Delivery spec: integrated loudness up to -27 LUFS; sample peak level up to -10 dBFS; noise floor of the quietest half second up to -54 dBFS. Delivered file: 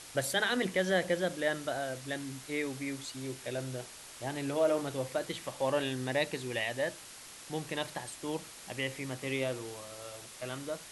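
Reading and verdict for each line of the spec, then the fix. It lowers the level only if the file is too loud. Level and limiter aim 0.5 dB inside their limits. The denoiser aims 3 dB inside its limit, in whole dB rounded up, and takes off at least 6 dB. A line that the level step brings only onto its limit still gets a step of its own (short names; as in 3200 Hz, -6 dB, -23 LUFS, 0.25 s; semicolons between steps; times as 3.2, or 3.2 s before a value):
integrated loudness -34.5 LUFS: OK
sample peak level -17.0 dBFS: OK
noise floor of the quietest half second -50 dBFS: fail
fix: denoiser 7 dB, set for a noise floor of -50 dBFS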